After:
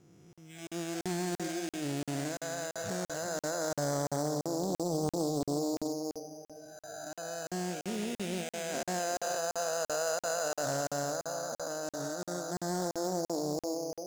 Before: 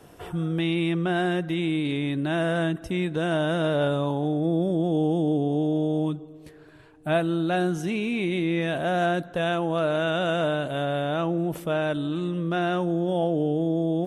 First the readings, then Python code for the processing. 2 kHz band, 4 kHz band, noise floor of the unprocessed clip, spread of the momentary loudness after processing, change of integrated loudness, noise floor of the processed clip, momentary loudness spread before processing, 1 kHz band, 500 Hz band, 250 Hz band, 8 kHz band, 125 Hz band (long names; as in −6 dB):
−10.5 dB, −6.5 dB, −49 dBFS, 8 LU, −9.0 dB, below −85 dBFS, 4 LU, −7.5 dB, −8.5 dB, −12.0 dB, +13.5 dB, −13.0 dB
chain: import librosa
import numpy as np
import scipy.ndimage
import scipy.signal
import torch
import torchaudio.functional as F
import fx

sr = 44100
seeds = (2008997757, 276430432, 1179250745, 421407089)

y = fx.spec_blur(x, sr, span_ms=820.0)
y = np.repeat(scipy.signal.resample_poly(y, 1, 8), 8)[:len(y)]
y = fx.echo_feedback(y, sr, ms=789, feedback_pct=59, wet_db=-18)
y = fx.dynamic_eq(y, sr, hz=340.0, q=1.6, threshold_db=-39.0, ratio=4.0, max_db=-3)
y = fx.noise_reduce_blind(y, sr, reduce_db=18)
y = fx.peak_eq(y, sr, hz=6800.0, db=14.5, octaves=0.32)
y = y + 10.0 ** (-12.5 / 20.0) * np.pad(y, (int(369 * sr / 1000.0), 0))[:len(y)]
y = fx.buffer_crackle(y, sr, first_s=0.33, period_s=0.34, block=2048, kind='zero')
y = fx.doppler_dist(y, sr, depth_ms=0.4)
y = y * librosa.db_to_amplitude(-3.5)